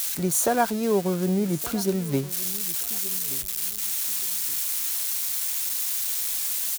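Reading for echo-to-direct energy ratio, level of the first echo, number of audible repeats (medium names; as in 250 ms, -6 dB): -18.0 dB, -18.5 dB, 2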